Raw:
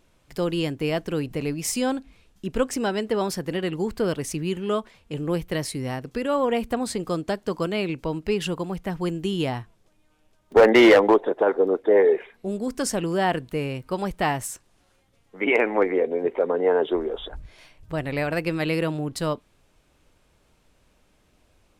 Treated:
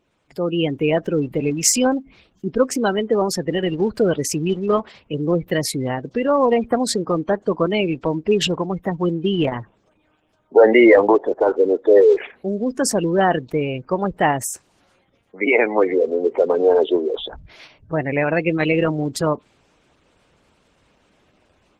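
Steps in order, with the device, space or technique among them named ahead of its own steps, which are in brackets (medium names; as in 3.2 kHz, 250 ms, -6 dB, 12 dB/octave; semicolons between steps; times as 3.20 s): noise-suppressed video call (high-pass 150 Hz 6 dB/octave; spectral gate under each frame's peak -20 dB strong; level rider gain up to 9 dB; trim -1 dB; Opus 16 kbps 48 kHz)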